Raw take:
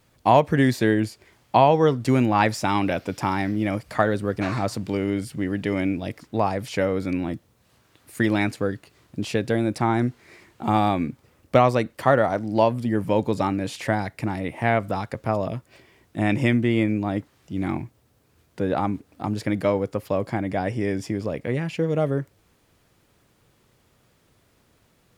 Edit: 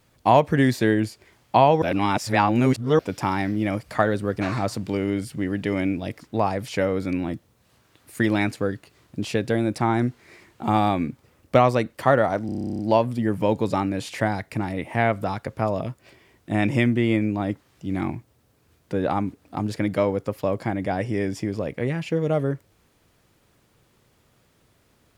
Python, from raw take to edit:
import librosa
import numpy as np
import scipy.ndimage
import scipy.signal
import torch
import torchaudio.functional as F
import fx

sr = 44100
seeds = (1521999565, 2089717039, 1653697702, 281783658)

y = fx.edit(x, sr, fx.reverse_span(start_s=1.82, length_s=1.17),
    fx.stutter(start_s=12.46, slice_s=0.03, count=12), tone=tone)